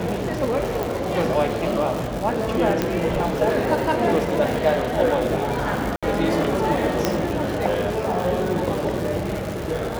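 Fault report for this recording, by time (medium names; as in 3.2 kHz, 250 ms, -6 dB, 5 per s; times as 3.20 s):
crackle 300 per s -26 dBFS
0.83 s: pop
2.82 s: pop -7 dBFS
5.96–6.03 s: dropout 66 ms
7.05 s: pop -4 dBFS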